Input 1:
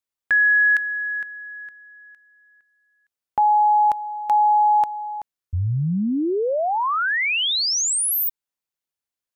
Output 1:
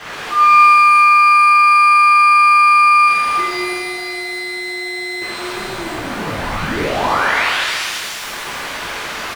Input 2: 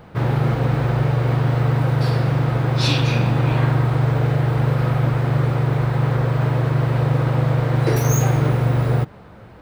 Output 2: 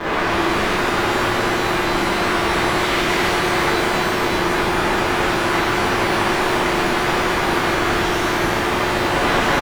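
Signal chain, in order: infinite clipping; Chebyshev low-pass 2000 Hz, order 2; tilt shelf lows -9 dB, about 770 Hz; crackle 310/s -29 dBFS; frequency shift -480 Hz; on a send: echo 0.342 s -9 dB; on the sum: shimmer reverb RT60 2.2 s, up +12 st, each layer -8 dB, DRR -10.5 dB; gain -9 dB

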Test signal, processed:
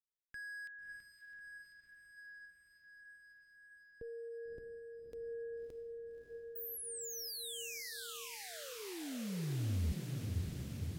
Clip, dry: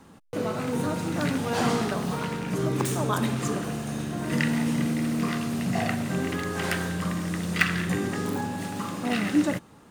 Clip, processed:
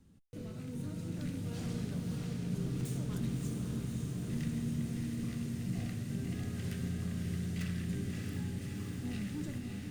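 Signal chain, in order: hard clip -21.5 dBFS; passive tone stack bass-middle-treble 10-0-1; on a send: diffused feedback echo 0.603 s, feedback 74%, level -3.5 dB; on the sum: gain +5 dB

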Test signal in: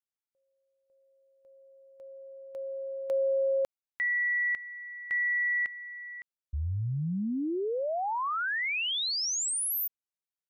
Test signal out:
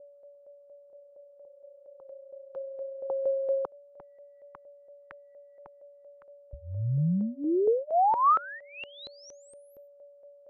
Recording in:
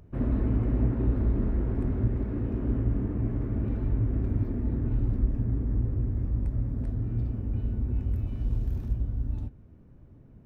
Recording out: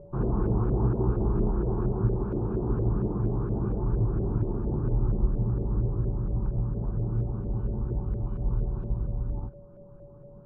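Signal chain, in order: fixed phaser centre 390 Hz, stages 8; whine 570 Hz -60 dBFS; LFO low-pass saw up 4.3 Hz 530–1800 Hz; gain +5.5 dB

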